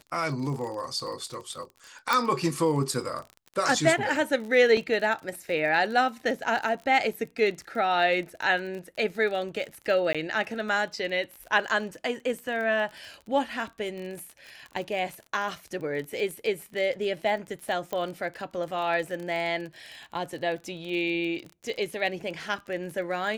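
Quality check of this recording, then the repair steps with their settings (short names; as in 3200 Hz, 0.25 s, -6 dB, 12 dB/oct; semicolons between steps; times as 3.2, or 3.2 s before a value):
crackle 32/s -34 dBFS
2.13 pop
4.77 gap 3 ms
10.13–10.15 gap 16 ms
17.93 pop -17 dBFS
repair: de-click; interpolate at 4.77, 3 ms; interpolate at 10.13, 16 ms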